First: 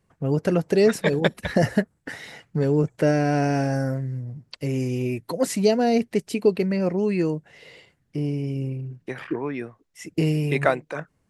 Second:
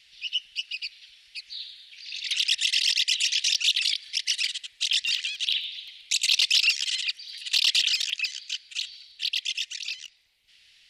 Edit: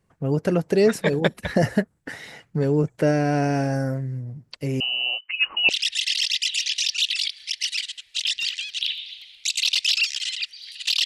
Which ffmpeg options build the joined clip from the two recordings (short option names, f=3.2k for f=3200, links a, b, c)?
-filter_complex "[0:a]asettb=1/sr,asplit=3[a][b][c];[a]atrim=end=4.804[d];[b]atrim=start=4.8:end=5.69,asetpts=PTS-STARTPTS,afade=t=in:d=0.004:c=qsin,afade=t=out:st=0.886:d=0.004:c=qsin,lowpass=f=2.6k:t=q:w=0.5098,lowpass=f=2.6k:t=q:w=0.6013,lowpass=f=2.6k:t=q:w=0.9,lowpass=f=2.6k:t=q:w=2.563,afreqshift=-3100[e];[c]atrim=start=5.686[f];[d][e]acrossfade=d=0.004:c1=hsin:c2=qsin[g];[g][f]acrossfade=d=0.004:c1=qsin:c2=hsin,apad=whole_dur=11.05,atrim=end=11.05,atrim=end=5.692[h];[1:a]atrim=start=2.348:end=7.71[i];[h][i]acrossfade=d=0.004:c1=hsin:c2=hsin"